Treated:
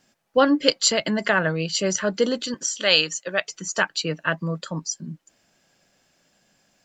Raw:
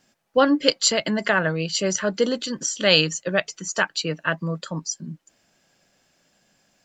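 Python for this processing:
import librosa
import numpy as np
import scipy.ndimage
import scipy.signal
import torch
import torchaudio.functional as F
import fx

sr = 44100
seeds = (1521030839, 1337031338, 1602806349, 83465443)

y = fx.highpass(x, sr, hz=610.0, slope=6, at=(2.54, 3.48))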